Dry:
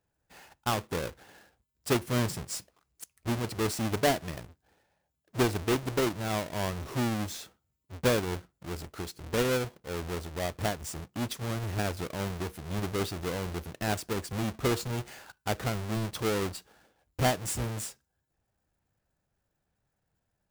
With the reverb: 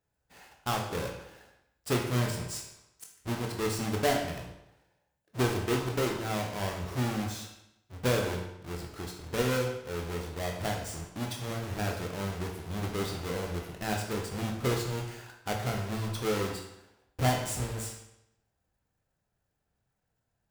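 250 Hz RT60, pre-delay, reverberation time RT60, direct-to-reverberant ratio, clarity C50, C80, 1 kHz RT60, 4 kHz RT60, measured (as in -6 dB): 0.80 s, 18 ms, 0.85 s, 0.5 dB, 5.0 dB, 7.5 dB, 0.85 s, 0.75 s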